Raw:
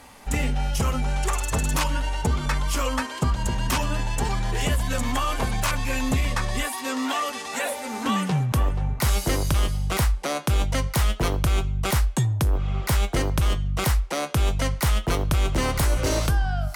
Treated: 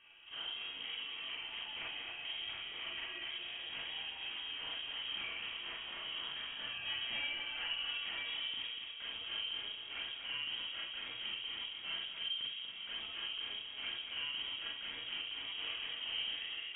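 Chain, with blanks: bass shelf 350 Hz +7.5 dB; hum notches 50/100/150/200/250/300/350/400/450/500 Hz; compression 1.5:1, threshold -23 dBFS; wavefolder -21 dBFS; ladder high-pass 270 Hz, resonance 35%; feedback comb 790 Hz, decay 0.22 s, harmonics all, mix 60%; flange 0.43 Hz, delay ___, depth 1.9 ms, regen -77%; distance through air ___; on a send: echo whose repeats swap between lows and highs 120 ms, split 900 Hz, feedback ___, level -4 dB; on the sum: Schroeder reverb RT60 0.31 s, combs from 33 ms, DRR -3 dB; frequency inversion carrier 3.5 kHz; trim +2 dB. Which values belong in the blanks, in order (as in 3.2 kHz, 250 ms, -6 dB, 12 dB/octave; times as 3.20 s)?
0 ms, 210 m, 73%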